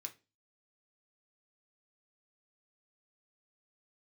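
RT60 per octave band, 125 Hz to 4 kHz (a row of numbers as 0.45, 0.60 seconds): 0.45, 0.40, 0.35, 0.25, 0.25, 0.25 seconds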